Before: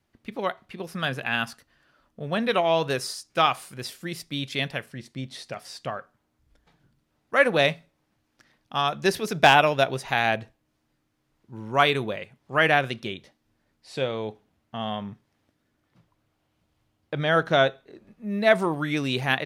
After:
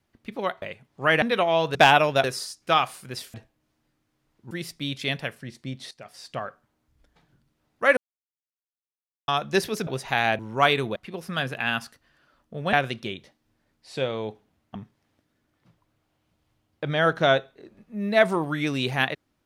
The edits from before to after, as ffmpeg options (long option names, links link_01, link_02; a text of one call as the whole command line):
ffmpeg -i in.wav -filter_complex "[0:a]asplit=15[link_01][link_02][link_03][link_04][link_05][link_06][link_07][link_08][link_09][link_10][link_11][link_12][link_13][link_14][link_15];[link_01]atrim=end=0.622[link_16];[link_02]atrim=start=12.128:end=12.732[link_17];[link_03]atrim=start=2.388:end=2.922[link_18];[link_04]atrim=start=9.378:end=9.872[link_19];[link_05]atrim=start=2.918:end=4.022[link_20];[link_06]atrim=start=10.388:end=11.562[link_21];[link_07]atrim=start=4.018:end=5.42,asetpts=PTS-STARTPTS,afade=type=out:start_time=1.398:duration=0.004:curve=hsin:silence=0.199526[link_22];[link_08]atrim=start=5.42:end=7.48,asetpts=PTS-STARTPTS,afade=type=in:duration=0.49:silence=0.199526,afade=type=out:start_time=2.056:duration=0.004:curve=hsin[link_23];[link_09]atrim=start=7.48:end=8.79,asetpts=PTS-STARTPTS,volume=0[link_24];[link_10]atrim=start=8.79:end=9.382,asetpts=PTS-STARTPTS,afade=type=in:duration=0.004:curve=hsin[link_25];[link_11]atrim=start=9.868:end=10.392[link_26];[link_12]atrim=start=11.558:end=12.132[link_27];[link_13]atrim=start=0.618:end=2.392[link_28];[link_14]atrim=start=12.728:end=14.752[link_29];[link_15]atrim=start=15.048[link_30];[link_16][link_17]acrossfade=duration=0.004:curve1=hsin:curve2=hsin[link_31];[link_31][link_18]acrossfade=duration=0.004:curve1=hsin:curve2=hsin[link_32];[link_32][link_19]acrossfade=duration=0.004:curve1=hsin:curve2=hsin[link_33];[link_33][link_20]acrossfade=duration=0.004:curve1=hsin:curve2=hsin[link_34];[link_34][link_21]acrossfade=duration=0.004:curve1=hsin:curve2=hsin[link_35];[link_22][link_23][link_24][link_25]concat=n=4:v=0:a=1[link_36];[link_35][link_36]acrossfade=duration=0.004:curve1=hsin:curve2=hsin[link_37];[link_37][link_26]acrossfade=duration=0.004:curve1=hsin:curve2=hsin[link_38];[link_38][link_27]acrossfade=duration=0.004:curve1=hsin:curve2=hsin[link_39];[link_39][link_28]acrossfade=duration=0.004:curve1=hsin:curve2=hsin[link_40];[link_40][link_29]acrossfade=duration=0.004:curve1=hsin:curve2=hsin[link_41];[link_41][link_30]acrossfade=duration=0.004:curve1=hsin:curve2=hsin" out.wav